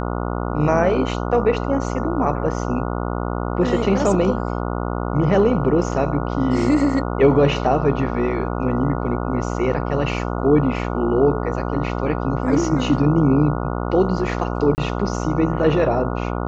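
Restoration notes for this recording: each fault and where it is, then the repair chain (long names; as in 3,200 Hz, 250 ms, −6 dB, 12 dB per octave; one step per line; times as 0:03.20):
mains buzz 60 Hz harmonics 24 −24 dBFS
0:14.75–0:14.78: drop-out 29 ms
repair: hum removal 60 Hz, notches 24
repair the gap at 0:14.75, 29 ms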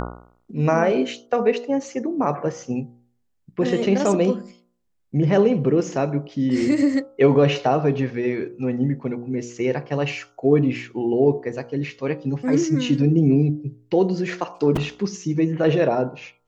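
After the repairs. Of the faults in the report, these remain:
none of them is left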